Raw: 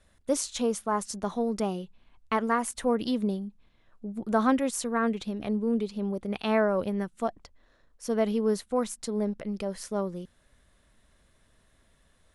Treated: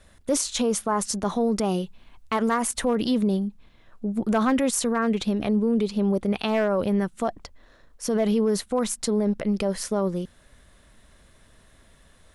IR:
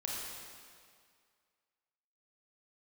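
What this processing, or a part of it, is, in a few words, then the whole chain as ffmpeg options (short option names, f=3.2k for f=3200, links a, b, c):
clipper into limiter: -filter_complex "[0:a]asettb=1/sr,asplit=3[a][b][c];[a]atrim=end=1.654[d];[b]atrim=start=1.65:end=2.63,asetpts=PTS-STARTPTS,afade=t=in:d=0.004:c=qsin,afade=t=out:st=0.976:d=0.004:c=qsin,highshelf=f=4.7k:g=4.5[e];[c]atrim=start=2.626[f];[d][e]acrossfade=d=0.004:c1=hsin:c2=qsin[g];[g][f]acrossfade=d=0.004:c1=qsin:c2=hsin,asoftclip=type=hard:threshold=-17dB,alimiter=limit=-24dB:level=0:latency=1:release=26,volume=9dB"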